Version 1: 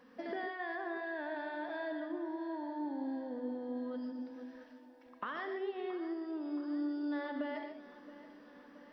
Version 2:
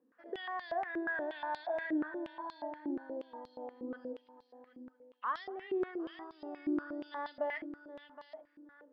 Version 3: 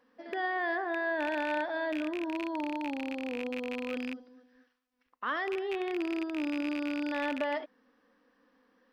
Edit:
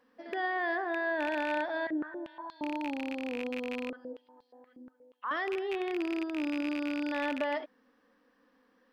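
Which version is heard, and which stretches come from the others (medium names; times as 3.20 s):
3
1.87–2.61 s: from 2
3.90–5.31 s: from 2
not used: 1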